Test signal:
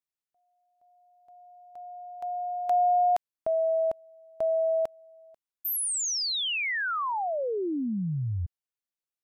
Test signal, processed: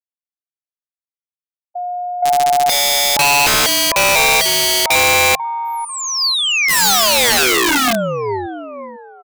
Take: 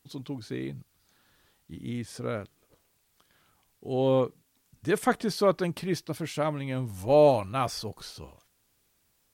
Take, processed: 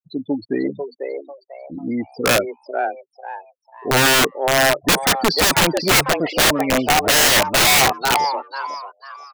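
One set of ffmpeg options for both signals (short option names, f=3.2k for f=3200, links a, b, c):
-filter_complex "[0:a]agate=range=-18dB:threshold=-50dB:ratio=16:release=375:detection=rms,afftfilt=real='re*gte(hypot(re,im),0.0224)':imag='im*gte(hypot(re,im),0.0224)':win_size=1024:overlap=0.75,aeval=exprs='0.316*(cos(1*acos(clip(val(0)/0.316,-1,1)))-cos(1*PI/2))+0.0126*(cos(4*acos(clip(val(0)/0.316,-1,1)))-cos(4*PI/2))':c=same,highpass=130,equalizer=f=130:t=q:w=4:g=-7,equalizer=f=270:t=q:w=4:g=5,equalizer=f=620:t=q:w=4:g=8,equalizer=f=1.5k:t=q:w=4:g=3,equalizer=f=4.6k:t=q:w=4:g=7,lowpass=f=8.4k:w=0.5412,lowpass=f=8.4k:w=1.3066,asplit=2[a][b];[b]highpass=f=720:p=1,volume=18dB,asoftclip=type=tanh:threshold=-4dB[c];[a][c]amix=inputs=2:normalize=0,lowpass=f=1.6k:p=1,volume=-6dB,asplit=5[d][e][f][g][h];[e]adelay=495,afreqshift=140,volume=-6dB[i];[f]adelay=990,afreqshift=280,volume=-16.2dB[j];[g]adelay=1485,afreqshift=420,volume=-26.3dB[k];[h]adelay=1980,afreqshift=560,volume=-36.5dB[l];[d][i][j][k][l]amix=inputs=5:normalize=0,aeval=exprs='(mod(5.96*val(0)+1,2)-1)/5.96':c=same,volume=6.5dB"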